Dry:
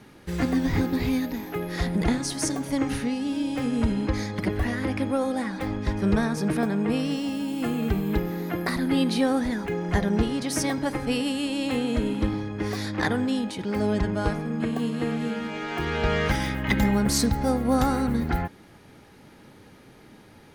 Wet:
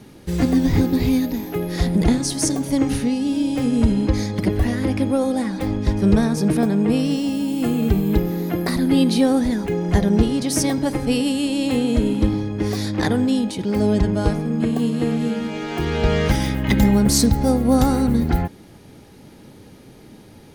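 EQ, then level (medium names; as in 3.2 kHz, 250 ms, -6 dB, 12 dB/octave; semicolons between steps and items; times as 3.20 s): peaking EQ 1.5 kHz -8.5 dB 2 oct; +7.5 dB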